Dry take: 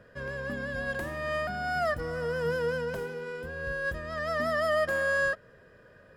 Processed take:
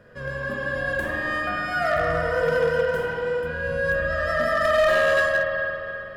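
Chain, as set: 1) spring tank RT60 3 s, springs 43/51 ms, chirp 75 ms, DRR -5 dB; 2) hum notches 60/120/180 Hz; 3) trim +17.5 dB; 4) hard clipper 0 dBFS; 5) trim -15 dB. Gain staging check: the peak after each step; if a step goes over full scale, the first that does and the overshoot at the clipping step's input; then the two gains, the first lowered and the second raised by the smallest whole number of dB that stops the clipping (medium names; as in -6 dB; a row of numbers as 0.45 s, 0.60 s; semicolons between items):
-9.5 dBFS, -9.5 dBFS, +8.0 dBFS, 0.0 dBFS, -15.0 dBFS; step 3, 8.0 dB; step 3 +9.5 dB, step 5 -7 dB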